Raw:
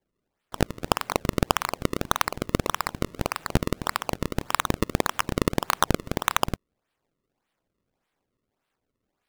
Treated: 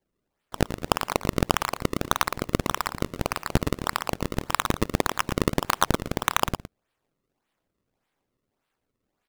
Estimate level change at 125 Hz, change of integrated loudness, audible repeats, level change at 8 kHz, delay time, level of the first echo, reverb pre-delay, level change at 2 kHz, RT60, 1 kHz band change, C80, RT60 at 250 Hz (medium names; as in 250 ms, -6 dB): +0.5 dB, +0.5 dB, 1, +0.5 dB, 114 ms, -11.0 dB, no reverb, +0.5 dB, no reverb, +0.5 dB, no reverb, no reverb